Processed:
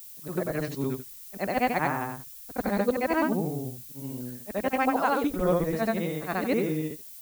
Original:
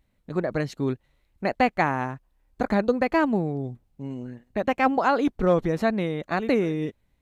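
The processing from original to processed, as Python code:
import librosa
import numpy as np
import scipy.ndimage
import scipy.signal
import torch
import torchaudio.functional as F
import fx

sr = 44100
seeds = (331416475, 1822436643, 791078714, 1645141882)

y = fx.frame_reverse(x, sr, frame_ms=193.0)
y = fx.dmg_noise_colour(y, sr, seeds[0], colour='violet', level_db=-45.0)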